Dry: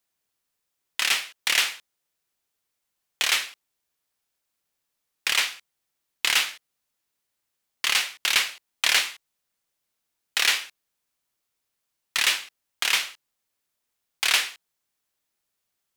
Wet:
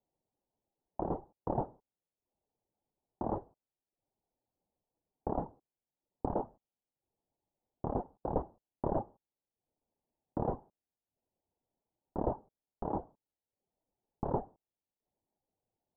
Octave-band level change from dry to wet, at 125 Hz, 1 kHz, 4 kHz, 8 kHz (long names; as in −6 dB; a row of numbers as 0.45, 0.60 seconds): can't be measured, −3.5 dB, below −40 dB, below −40 dB